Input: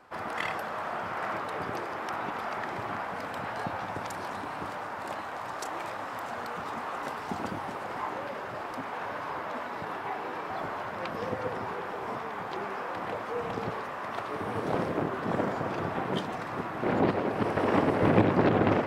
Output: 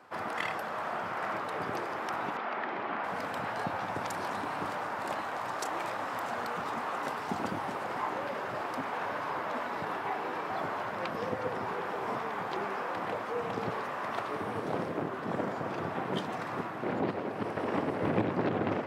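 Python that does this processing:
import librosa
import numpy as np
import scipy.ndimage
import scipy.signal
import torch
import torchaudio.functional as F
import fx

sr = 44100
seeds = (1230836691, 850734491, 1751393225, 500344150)

y = fx.cheby1_bandpass(x, sr, low_hz=240.0, high_hz=3000.0, order=2, at=(2.37, 3.04))
y = scipy.signal.sosfilt(scipy.signal.butter(2, 100.0, 'highpass', fs=sr, output='sos'), y)
y = fx.rider(y, sr, range_db=4, speed_s=0.5)
y = y * librosa.db_to_amplitude(-2.5)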